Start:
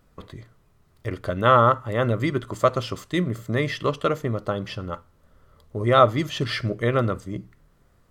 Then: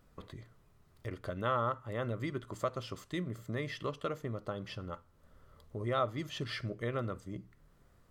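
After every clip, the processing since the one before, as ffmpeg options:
-af "acompressor=threshold=-45dB:ratio=1.5,volume=-4.5dB"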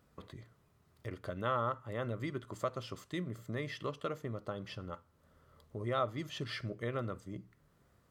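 -af "highpass=65,volume=-1.5dB"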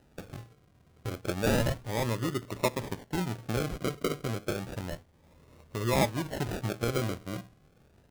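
-af "acrusher=samples=39:mix=1:aa=0.000001:lfo=1:lforange=23.4:lforate=0.31,volume=7.5dB"

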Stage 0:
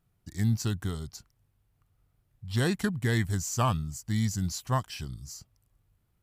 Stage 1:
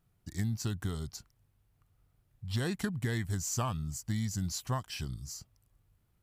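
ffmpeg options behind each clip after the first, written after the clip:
-af "acompressor=threshold=-29dB:ratio=6"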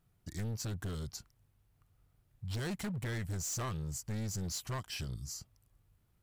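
-af "asoftclip=type=hard:threshold=-34.5dB"

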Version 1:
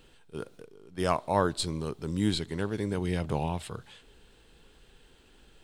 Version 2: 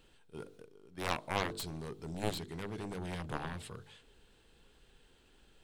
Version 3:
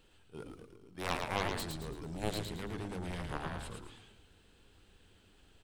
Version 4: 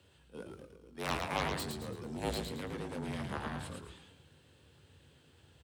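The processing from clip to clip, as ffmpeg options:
-af "bandreject=f=49:t=h:w=4,bandreject=f=98:t=h:w=4,bandreject=f=147:t=h:w=4,bandreject=f=196:t=h:w=4,bandreject=f=245:t=h:w=4,bandreject=f=294:t=h:w=4,bandreject=f=343:t=h:w=4,bandreject=f=392:t=h:w=4,bandreject=f=441:t=h:w=4,bandreject=f=490:t=h:w=4,aeval=exprs='0.299*(cos(1*acos(clip(val(0)/0.299,-1,1)))-cos(1*PI/2))+0.0944*(cos(7*acos(clip(val(0)/0.299,-1,1)))-cos(7*PI/2))':c=same,volume=-7.5dB"
-filter_complex "[0:a]asplit=6[a][b][c][d][e][f];[b]adelay=111,afreqshift=-110,volume=-4dB[g];[c]adelay=222,afreqshift=-220,volume=-12.6dB[h];[d]adelay=333,afreqshift=-330,volume=-21.3dB[i];[e]adelay=444,afreqshift=-440,volume=-29.9dB[j];[f]adelay=555,afreqshift=-550,volume=-38.5dB[k];[a][g][h][i][j][k]amix=inputs=6:normalize=0,volume=-1dB"
-filter_complex "[0:a]afreqshift=61,asplit=2[a][b];[b]adelay=21,volume=-11dB[c];[a][c]amix=inputs=2:normalize=0"

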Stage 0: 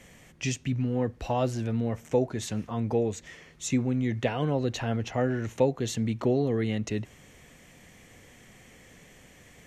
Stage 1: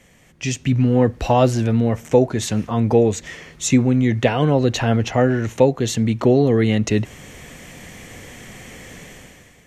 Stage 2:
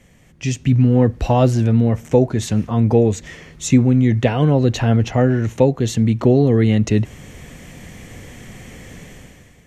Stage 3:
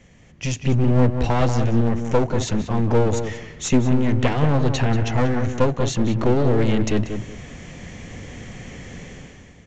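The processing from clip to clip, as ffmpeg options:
-af "dynaudnorm=f=130:g=9:m=14.5dB"
-af "lowshelf=f=280:g=8,volume=-2.5dB"
-filter_complex "[0:a]aresample=16000,aeval=exprs='clip(val(0),-1,0.0631)':c=same,aresample=44100,asplit=2[a][b];[b]adelay=186,lowpass=f=2.2k:p=1,volume=-7dB,asplit=2[c][d];[d]adelay=186,lowpass=f=2.2k:p=1,volume=0.25,asplit=2[e][f];[f]adelay=186,lowpass=f=2.2k:p=1,volume=0.25[g];[a][c][e][g]amix=inputs=4:normalize=0"

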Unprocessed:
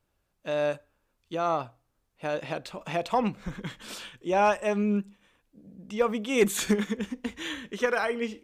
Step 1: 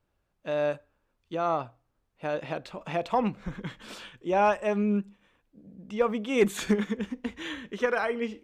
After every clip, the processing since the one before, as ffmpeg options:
-af "highshelf=f=4.8k:g=-10.5"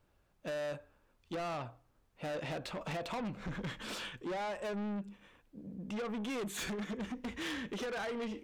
-af "acompressor=threshold=-30dB:ratio=6,asoftclip=type=tanh:threshold=-39.5dB,volume=4dB"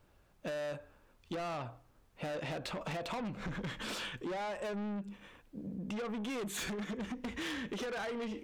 -af "acompressor=threshold=-43dB:ratio=6,volume=5.5dB"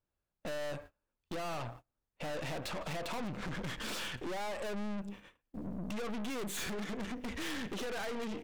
-filter_complex "[0:a]asplit=2[a][b];[b]adelay=170,highpass=300,lowpass=3.4k,asoftclip=type=hard:threshold=-40dB,volume=-21dB[c];[a][c]amix=inputs=2:normalize=0,agate=range=-26dB:threshold=-53dB:ratio=16:detection=peak,aeval=exprs='(tanh(178*val(0)+0.7)-tanh(0.7))/178':c=same,volume=7.5dB"

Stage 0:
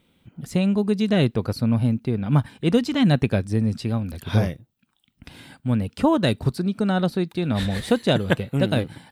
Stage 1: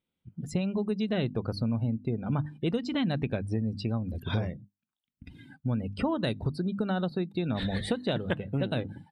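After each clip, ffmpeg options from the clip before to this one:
-af "bandreject=f=50:t=h:w=6,bandreject=f=100:t=h:w=6,bandreject=f=150:t=h:w=6,bandreject=f=200:t=h:w=6,bandreject=f=250:t=h:w=6,bandreject=f=300:t=h:w=6,afftdn=nr=23:nf=-39,acompressor=threshold=-27dB:ratio=4"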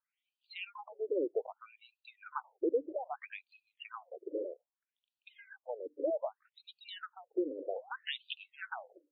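-af "equalizer=f=80:w=0.73:g=-10.5,afftfilt=real='re*between(b*sr/1024,400*pow(3500/400,0.5+0.5*sin(2*PI*0.63*pts/sr))/1.41,400*pow(3500/400,0.5+0.5*sin(2*PI*0.63*pts/sr))*1.41)':imag='im*between(b*sr/1024,400*pow(3500/400,0.5+0.5*sin(2*PI*0.63*pts/sr))/1.41,400*pow(3500/400,0.5+0.5*sin(2*PI*0.63*pts/sr))*1.41)':win_size=1024:overlap=0.75,volume=3dB"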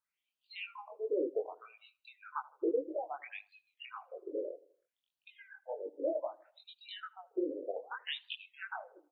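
-filter_complex "[0:a]flanger=delay=19:depth=5:speed=1.7,asplit=2[a][b];[b]adelay=79,lowpass=f=1.7k:p=1,volume=-20dB,asplit=2[c][d];[d]adelay=79,lowpass=f=1.7k:p=1,volume=0.51,asplit=2[e][f];[f]adelay=79,lowpass=f=1.7k:p=1,volume=0.51,asplit=2[g][h];[h]adelay=79,lowpass=f=1.7k:p=1,volume=0.51[i];[a][c][e][g][i]amix=inputs=5:normalize=0,volume=3dB"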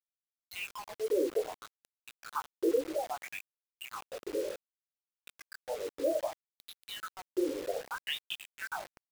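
-af "acrusher=bits=7:mix=0:aa=0.000001,volume=3.5dB"

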